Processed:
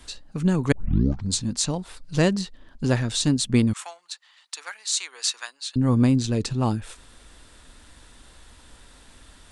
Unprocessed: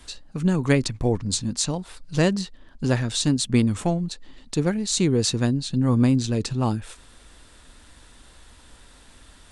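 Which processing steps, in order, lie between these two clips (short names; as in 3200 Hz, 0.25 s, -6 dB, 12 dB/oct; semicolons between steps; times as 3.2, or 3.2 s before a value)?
0.72 tape start 0.59 s; 3.73–5.76 HPF 1000 Hz 24 dB/oct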